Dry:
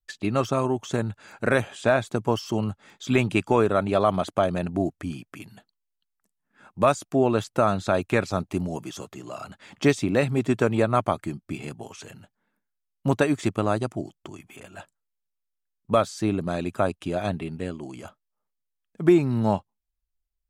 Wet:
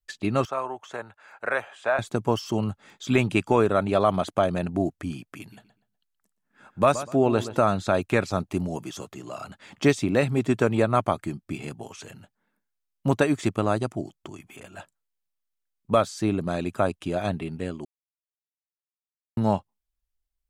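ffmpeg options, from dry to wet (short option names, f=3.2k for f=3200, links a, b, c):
-filter_complex "[0:a]asettb=1/sr,asplit=3[a][b][c];[a]atrim=end=0.454[d];[b]atrim=start=0.45:end=1.99,asetpts=PTS-STARTPTS,afade=t=in:d=0.004:c=qsin,afade=t=out:st=1.536:d=0.004:c=qsin,acrossover=split=540 2400:gain=0.0794 1 0.251[e][f][g];[e][f][g]amix=inputs=3:normalize=0[h];[c]atrim=start=1.986[i];[d][h]acrossfade=d=0.004:c1=hsin:c2=qsin[j];[j][i]acrossfade=d=0.004:c1=qsin:c2=hsin,asettb=1/sr,asplit=3[k][l][m];[k]atrim=end=5.404[n];[l]atrim=start=5.4:end=7.67,asetpts=PTS-STARTPTS,afade=t=in:d=0.004:c=qsin,afade=t=out:st=2.266:d=0.004:c=qsin,asplit=2[o][p];[p]adelay=123,lowpass=f=3.6k:p=1,volume=-13dB,asplit=2[q][r];[r]adelay=123,lowpass=f=3.6k:p=1,volume=0.27,asplit=2[s][t];[t]adelay=123,lowpass=f=3.6k:p=1,volume=0.27[u];[o][q][s][u]amix=inputs=4:normalize=0,atrim=end_sample=100107[v];[m]atrim=start=7.666[w];[n][v]acrossfade=d=0.004:c1=hsin:c2=qsin[x];[x][w]acrossfade=d=0.004:c1=qsin:c2=hsin,asplit=3[y][z][aa];[y]atrim=end=17.85,asetpts=PTS-STARTPTS,afade=t=out:st=17.846:d=0.004:c=hsin[ab];[z]atrim=start=17.85:end=19.37,asetpts=PTS-STARTPTS,volume=0[ac];[aa]atrim=start=19.37,asetpts=PTS-STARTPTS,afade=t=in:d=0.004:c=hsin[ad];[ab][ac][ad]concat=n=3:v=0:a=1"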